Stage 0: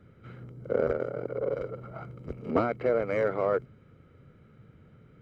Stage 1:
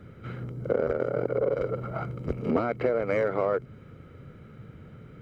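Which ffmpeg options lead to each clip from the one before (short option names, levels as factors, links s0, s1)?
-af "acompressor=threshold=0.0316:ratio=10,volume=2.66"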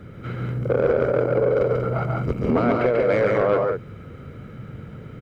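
-af "aecho=1:1:139.9|186.6:0.708|0.447,asoftclip=type=tanh:threshold=0.133,volume=2.11"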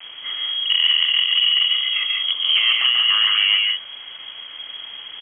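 -af "acrusher=bits=6:mix=0:aa=0.000001,lowpass=f=2900:t=q:w=0.5098,lowpass=f=2900:t=q:w=0.6013,lowpass=f=2900:t=q:w=0.9,lowpass=f=2900:t=q:w=2.563,afreqshift=-3400,volume=1.26"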